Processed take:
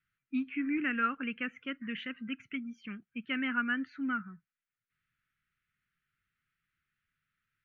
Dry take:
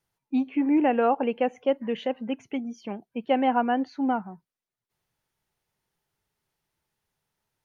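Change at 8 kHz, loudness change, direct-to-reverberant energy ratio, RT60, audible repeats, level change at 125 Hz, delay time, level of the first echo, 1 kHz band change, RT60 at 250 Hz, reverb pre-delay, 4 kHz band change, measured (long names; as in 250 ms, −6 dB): can't be measured, −8.5 dB, no reverb audible, no reverb audible, no echo audible, can't be measured, no echo audible, no echo audible, −12.5 dB, no reverb audible, no reverb audible, −2.5 dB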